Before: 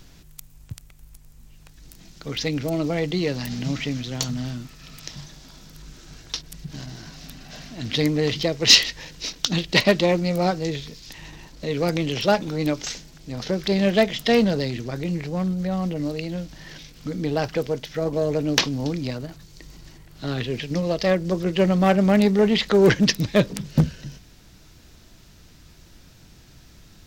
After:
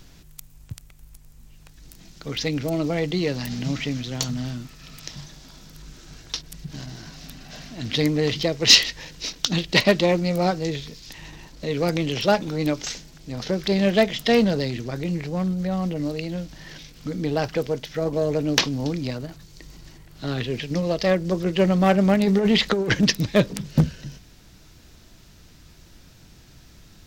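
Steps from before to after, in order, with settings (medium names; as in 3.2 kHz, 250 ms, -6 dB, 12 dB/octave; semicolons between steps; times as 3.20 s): 22.14–23.03 s: compressor with a negative ratio -18 dBFS, ratio -0.5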